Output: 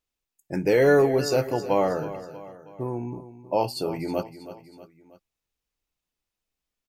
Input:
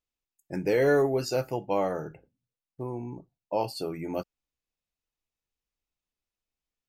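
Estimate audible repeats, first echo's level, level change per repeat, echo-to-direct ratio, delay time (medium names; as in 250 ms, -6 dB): 3, -14.0 dB, -6.0 dB, -12.5 dB, 320 ms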